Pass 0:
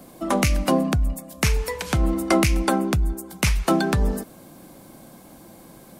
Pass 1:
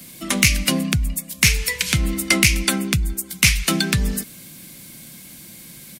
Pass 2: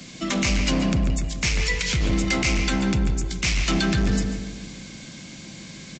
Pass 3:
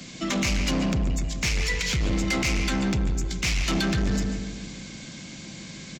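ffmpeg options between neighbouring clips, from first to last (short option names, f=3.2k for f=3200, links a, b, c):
-filter_complex "[0:a]firequalizer=gain_entry='entry(150,0);entry(300,-10);entry(770,-17);entry(2100,6)':delay=0.05:min_phase=1,acrossover=split=120[a][b];[b]acontrast=82[c];[a][c]amix=inputs=2:normalize=0,volume=-1dB"
-filter_complex "[0:a]alimiter=limit=-12.5dB:level=0:latency=1:release=137,aresample=16000,volume=22.5dB,asoftclip=hard,volume=-22.5dB,aresample=44100,asplit=2[a][b];[b]adelay=143,lowpass=f=2.2k:p=1,volume=-4dB,asplit=2[c][d];[d]adelay=143,lowpass=f=2.2k:p=1,volume=0.5,asplit=2[e][f];[f]adelay=143,lowpass=f=2.2k:p=1,volume=0.5,asplit=2[g][h];[h]adelay=143,lowpass=f=2.2k:p=1,volume=0.5,asplit=2[i][j];[j]adelay=143,lowpass=f=2.2k:p=1,volume=0.5,asplit=2[k][l];[l]adelay=143,lowpass=f=2.2k:p=1,volume=0.5[m];[a][c][e][g][i][k][m]amix=inputs=7:normalize=0,volume=3.5dB"
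-af "asoftclip=type=tanh:threshold=-19dB"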